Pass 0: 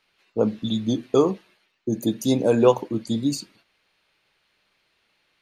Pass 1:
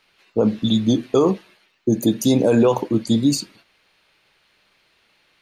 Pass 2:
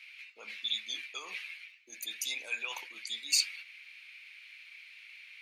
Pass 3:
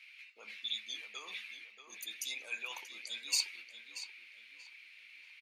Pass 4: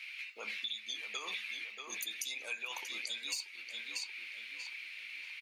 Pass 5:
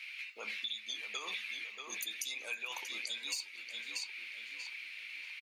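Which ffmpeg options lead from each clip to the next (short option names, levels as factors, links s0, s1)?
-af "alimiter=limit=0.188:level=0:latency=1:release=38,volume=2.24"
-af "areverse,acompressor=threshold=0.0631:ratio=6,areverse,highpass=f=2300:t=q:w=7.4"
-filter_complex "[0:a]asplit=2[s0][s1];[s1]adelay=633,lowpass=f=2900:p=1,volume=0.398,asplit=2[s2][s3];[s3]adelay=633,lowpass=f=2900:p=1,volume=0.37,asplit=2[s4][s5];[s5]adelay=633,lowpass=f=2900:p=1,volume=0.37,asplit=2[s6][s7];[s7]adelay=633,lowpass=f=2900:p=1,volume=0.37[s8];[s0][s2][s4][s6][s8]amix=inputs=5:normalize=0,volume=0.596"
-filter_complex "[0:a]asplit=2[s0][s1];[s1]asoftclip=type=hard:threshold=0.0355,volume=0.282[s2];[s0][s2]amix=inputs=2:normalize=0,acompressor=threshold=0.00631:ratio=12,volume=2.37"
-af "aecho=1:1:505:0.0708"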